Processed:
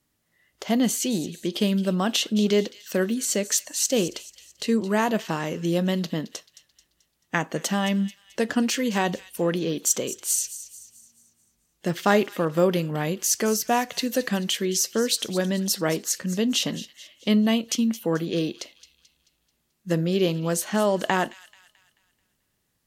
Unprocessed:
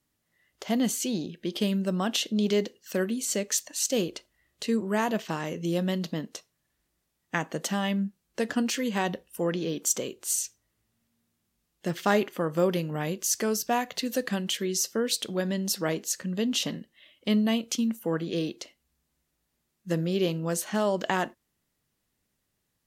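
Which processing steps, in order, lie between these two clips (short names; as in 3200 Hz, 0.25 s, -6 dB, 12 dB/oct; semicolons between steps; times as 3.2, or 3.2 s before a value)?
thin delay 0.218 s, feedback 44%, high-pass 2600 Hz, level -13.5 dB; gain +4 dB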